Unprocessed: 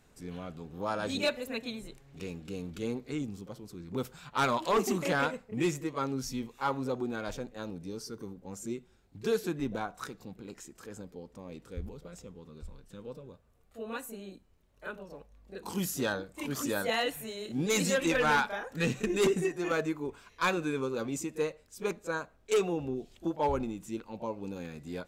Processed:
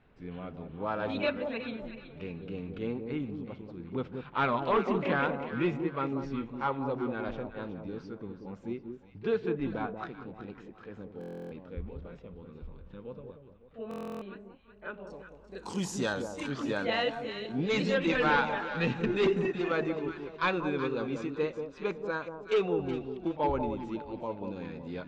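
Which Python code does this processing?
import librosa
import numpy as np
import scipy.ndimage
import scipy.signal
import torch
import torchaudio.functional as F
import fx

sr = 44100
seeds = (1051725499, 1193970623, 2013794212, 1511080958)

y = fx.lowpass(x, sr, hz=fx.steps((0.0, 3100.0), (15.07, 7800.0), (16.48, 4100.0)), slope=24)
y = fx.echo_alternate(y, sr, ms=186, hz=1000.0, feedback_pct=56, wet_db=-6)
y = fx.buffer_glitch(y, sr, at_s=(11.19, 13.89), block=1024, repeats=13)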